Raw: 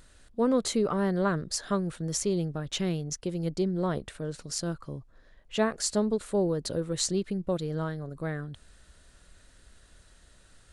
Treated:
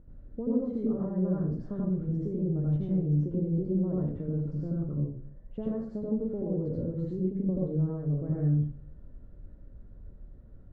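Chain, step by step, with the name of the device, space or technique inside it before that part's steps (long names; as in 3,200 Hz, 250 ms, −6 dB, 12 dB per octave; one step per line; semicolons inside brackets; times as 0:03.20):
television next door (downward compressor 5 to 1, threshold −33 dBFS, peak gain reduction 12 dB; low-pass filter 390 Hz 12 dB per octave; convolution reverb RT60 0.45 s, pre-delay 76 ms, DRR −5.5 dB)
level +1.5 dB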